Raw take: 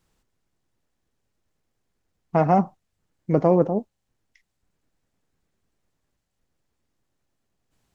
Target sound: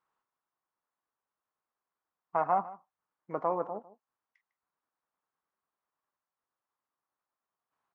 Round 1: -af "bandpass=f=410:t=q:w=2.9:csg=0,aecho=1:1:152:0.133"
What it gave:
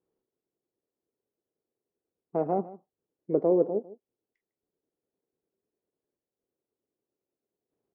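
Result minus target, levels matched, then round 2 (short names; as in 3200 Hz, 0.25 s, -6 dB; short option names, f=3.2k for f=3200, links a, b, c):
1000 Hz band -10.5 dB
-af "bandpass=f=1.1k:t=q:w=2.9:csg=0,aecho=1:1:152:0.133"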